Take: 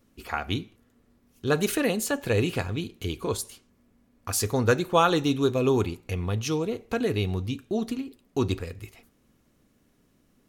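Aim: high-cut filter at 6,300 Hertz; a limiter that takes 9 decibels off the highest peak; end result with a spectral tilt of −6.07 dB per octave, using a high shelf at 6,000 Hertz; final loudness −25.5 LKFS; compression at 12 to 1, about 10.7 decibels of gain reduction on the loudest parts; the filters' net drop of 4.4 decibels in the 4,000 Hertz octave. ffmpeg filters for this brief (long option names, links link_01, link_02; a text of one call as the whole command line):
ffmpeg -i in.wav -af "lowpass=6300,equalizer=frequency=4000:width_type=o:gain=-4,highshelf=frequency=6000:gain=-3.5,acompressor=threshold=-26dB:ratio=12,volume=8.5dB,alimiter=limit=-14dB:level=0:latency=1" out.wav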